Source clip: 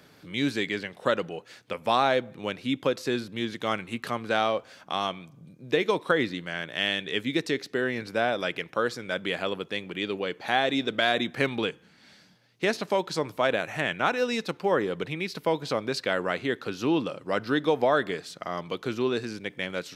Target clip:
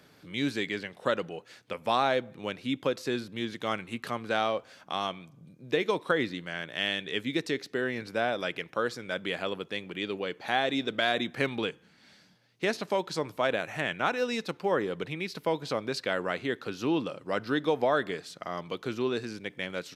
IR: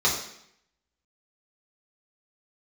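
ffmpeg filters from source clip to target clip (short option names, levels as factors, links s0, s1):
-af "aresample=32000,aresample=44100,volume=0.708"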